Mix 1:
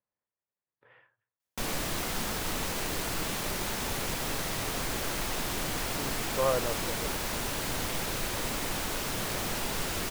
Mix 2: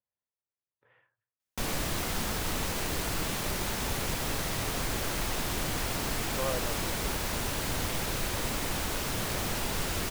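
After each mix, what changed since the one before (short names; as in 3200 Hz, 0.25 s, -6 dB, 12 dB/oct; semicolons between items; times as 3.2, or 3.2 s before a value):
speech -6.5 dB; master: add bell 62 Hz +5.5 dB 2.1 oct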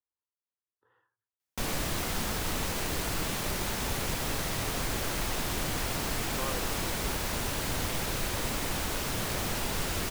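speech: add fixed phaser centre 620 Hz, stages 6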